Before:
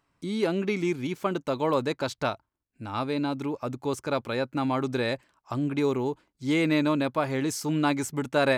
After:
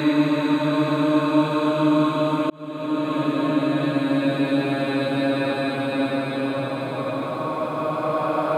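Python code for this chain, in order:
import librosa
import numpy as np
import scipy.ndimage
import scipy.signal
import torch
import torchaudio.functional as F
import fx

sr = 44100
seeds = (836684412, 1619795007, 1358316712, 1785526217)

y = fx.paulstretch(x, sr, seeds[0], factor=25.0, window_s=0.25, from_s=6.83)
y = fx.auto_swell(y, sr, attack_ms=680.0)
y = y * librosa.db_to_amplitude(4.0)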